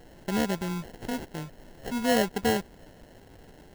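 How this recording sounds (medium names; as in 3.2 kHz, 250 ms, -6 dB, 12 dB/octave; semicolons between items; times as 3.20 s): a quantiser's noise floor 8-bit, dither triangular; phasing stages 6, 0.94 Hz, lowest notch 470–3500 Hz; aliases and images of a low sample rate 1.2 kHz, jitter 0%; AAC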